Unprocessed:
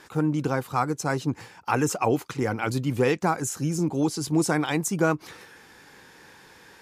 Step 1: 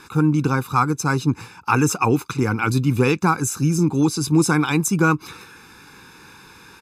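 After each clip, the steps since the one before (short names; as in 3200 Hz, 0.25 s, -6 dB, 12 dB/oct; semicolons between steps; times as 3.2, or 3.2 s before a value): comb 0.8 ms, depth 77%; gain +4 dB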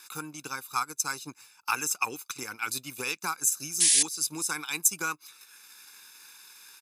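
transient shaper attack +5 dB, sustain -8 dB; painted sound noise, 3.8–4.03, 1600–11000 Hz -22 dBFS; differentiator; gain +2 dB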